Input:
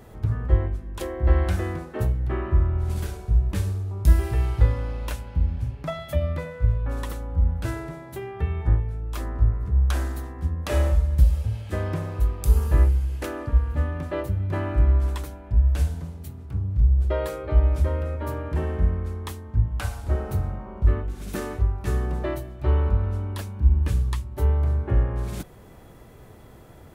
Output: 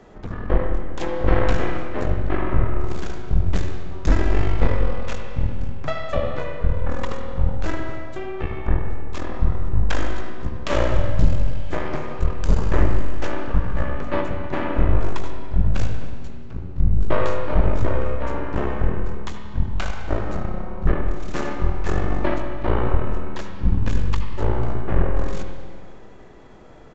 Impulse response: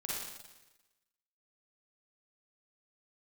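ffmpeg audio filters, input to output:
-filter_complex "[0:a]equalizer=frequency=100:width_type=o:width=1:gain=-13,afreqshift=-14,aeval=exprs='0.376*(cos(1*acos(clip(val(0)/0.376,-1,1)))-cos(1*PI/2))+0.0841*(cos(8*acos(clip(val(0)/0.376,-1,1)))-cos(8*PI/2))':channel_layout=same,asplit=2[link_01][link_02];[1:a]atrim=start_sample=2205,asetrate=27342,aresample=44100,lowpass=3400[link_03];[link_02][link_03]afir=irnorm=-1:irlink=0,volume=-7dB[link_04];[link_01][link_04]amix=inputs=2:normalize=0,aresample=16000,aresample=44100"

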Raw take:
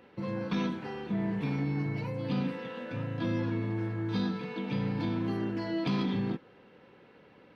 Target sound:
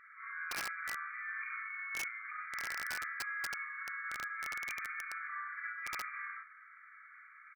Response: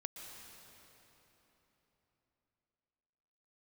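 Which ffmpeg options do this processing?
-af "aecho=1:1:33|68:0.562|0.668,alimiter=level_in=1.5dB:limit=-24dB:level=0:latency=1:release=64,volume=-1.5dB,afftfilt=real='re*between(b*sr/4096,1100,2400)':imag='im*between(b*sr/4096,1100,2400)':win_size=4096:overlap=0.75,aeval=exprs='(mod(89.1*val(0)+1,2)-1)/89.1':channel_layout=same,volume=7.5dB"

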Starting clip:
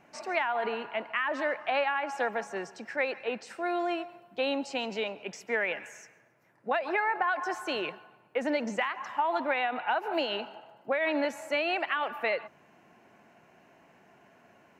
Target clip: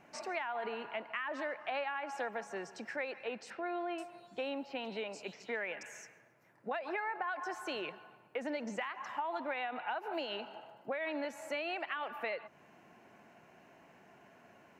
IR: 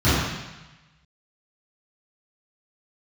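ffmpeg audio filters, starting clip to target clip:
-filter_complex "[0:a]acompressor=threshold=-40dB:ratio=2,asettb=1/sr,asplit=3[link_01][link_02][link_03];[link_01]atrim=end=3.504[link_04];[link_02]atrim=start=3.5:end=5.83,asetpts=PTS-STARTPTS,afade=type=in:duration=0.004:curve=qsin,afade=type=out:start_time=2.326:duration=0.004:curve=qsin,acrossover=split=4200[link_05][link_06];[link_06]adelay=480[link_07];[link_05][link_07]amix=inputs=2:normalize=0,atrim=end_sample=102753[link_08];[link_03]atrim=start=5.826[link_09];[link_04][link_08]acrossfade=duration=0.004:curve1=hsin:curve2=qsin[link_10];[link_10][link_09]acrossfade=duration=0.004:curve1=qsin:curve2=hsin,volume=-1dB"

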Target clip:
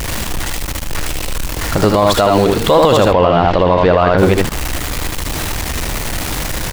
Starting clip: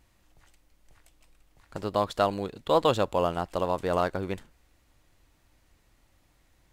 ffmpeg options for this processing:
ffmpeg -i in.wav -filter_complex "[0:a]aeval=exprs='val(0)+0.5*0.015*sgn(val(0))':channel_layout=same,asplit=3[link_01][link_02][link_03];[link_01]afade=type=out:start_time=3.04:duration=0.02[link_04];[link_02]lowpass=frequency=4100:width=0.5412,lowpass=frequency=4100:width=1.3066,afade=type=in:start_time=3.04:duration=0.02,afade=type=out:start_time=4.17:duration=0.02[link_05];[link_03]afade=type=in:start_time=4.17:duration=0.02[link_06];[link_04][link_05][link_06]amix=inputs=3:normalize=0,asplit=2[link_07][link_08];[link_08]asoftclip=type=hard:threshold=-18.5dB,volume=-11dB[link_09];[link_07][link_09]amix=inputs=2:normalize=0,aecho=1:1:65|78:0.237|0.562,alimiter=level_in=20dB:limit=-1dB:release=50:level=0:latency=1,volume=-1dB" out.wav

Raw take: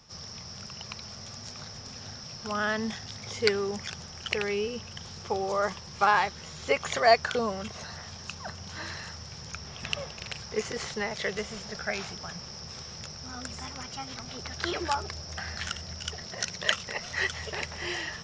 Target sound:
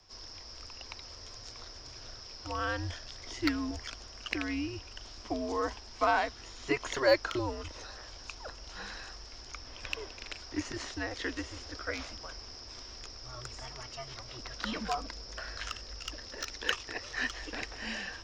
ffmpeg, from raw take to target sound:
ffmpeg -i in.wav -filter_complex "[0:a]afreqshift=-130,acrossover=split=130|4000[link_01][link_02][link_03];[link_03]volume=29dB,asoftclip=hard,volume=-29dB[link_04];[link_01][link_02][link_04]amix=inputs=3:normalize=0,volume=-4.5dB" out.wav

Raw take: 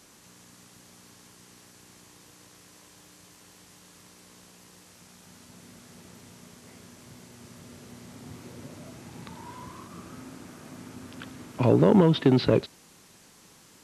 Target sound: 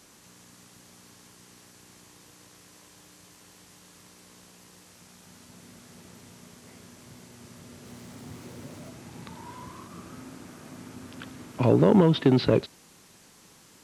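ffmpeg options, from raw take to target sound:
ffmpeg -i in.wav -filter_complex "[0:a]asettb=1/sr,asplit=3[link_01][link_02][link_03];[link_01]atrim=end=7.854[link_04];[link_02]atrim=start=7.85:end=8.9,asetpts=PTS-STARTPTS,afade=type=in:duration=0.004:curve=qsin,afade=type=out:start_time=1.046:duration=0.004:curve=qsin,aeval=exprs='val(0)+0.5*0.00178*sgn(val(0))':channel_layout=same[link_05];[link_03]atrim=start=8.896[link_06];[link_04][link_05]acrossfade=duration=0.004:curve1=hsin:curve2=qsin[link_07];[link_07][link_06]acrossfade=duration=0.004:curve1=qsin:curve2=hsin" out.wav

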